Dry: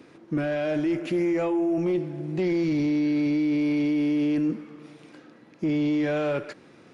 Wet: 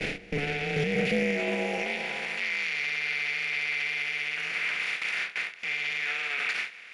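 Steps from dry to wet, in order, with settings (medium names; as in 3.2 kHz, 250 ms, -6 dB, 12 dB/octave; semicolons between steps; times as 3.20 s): spectral levelling over time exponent 0.4; gate with hold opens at -20 dBFS; resonant high shelf 1.6 kHz +10.5 dB, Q 3; peak limiter -22 dBFS, peak gain reduction 15.5 dB; high-pass sweep 130 Hz -> 1.1 kHz, 0.05–2.54 s; ring modulator 140 Hz; trim +3 dB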